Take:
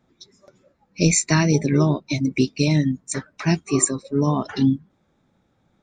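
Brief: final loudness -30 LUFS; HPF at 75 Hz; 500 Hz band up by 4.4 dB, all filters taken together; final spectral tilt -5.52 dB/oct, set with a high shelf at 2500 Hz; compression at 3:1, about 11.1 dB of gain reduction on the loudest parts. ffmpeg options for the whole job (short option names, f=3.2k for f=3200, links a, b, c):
-af "highpass=75,equalizer=f=500:t=o:g=6,highshelf=f=2.5k:g=-4,acompressor=threshold=-27dB:ratio=3,volume=-0.5dB"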